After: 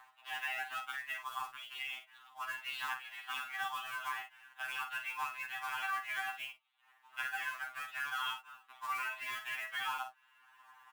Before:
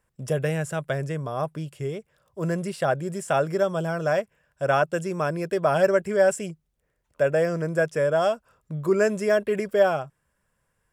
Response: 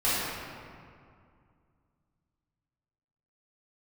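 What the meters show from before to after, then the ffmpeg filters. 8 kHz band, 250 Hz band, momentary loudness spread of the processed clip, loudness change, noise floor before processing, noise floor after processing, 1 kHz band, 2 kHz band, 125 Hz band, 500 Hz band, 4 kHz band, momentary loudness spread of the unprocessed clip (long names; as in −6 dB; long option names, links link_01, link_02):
−13.0 dB, below −40 dB, 8 LU, −14.5 dB, −74 dBFS, −69 dBFS, −10.0 dB, −6.0 dB, below −40 dB, below −40 dB, −1.0 dB, 11 LU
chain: -filter_complex "[0:a]afftfilt=real='re*lt(hypot(re,im),0.224)':imag='im*lt(hypot(re,im),0.224)':win_size=1024:overlap=0.75,equalizer=frequency=2800:width=3.6:gain=7,acrossover=split=1200[link_01][link_02];[link_01]acompressor=mode=upward:threshold=-48dB:ratio=2.5[link_03];[link_02]alimiter=level_in=5dB:limit=-24dB:level=0:latency=1:release=43,volume=-5dB[link_04];[link_03][link_04]amix=inputs=2:normalize=0,acompressor=threshold=-42dB:ratio=10,asuperpass=centerf=1800:order=20:qfactor=0.54,aecho=1:1:48|65:0.376|0.168,acrusher=bits=3:mode=log:mix=0:aa=0.000001,afftfilt=real='re*2.45*eq(mod(b,6),0)':imag='im*2.45*eq(mod(b,6),0)':win_size=2048:overlap=0.75,volume=11.5dB"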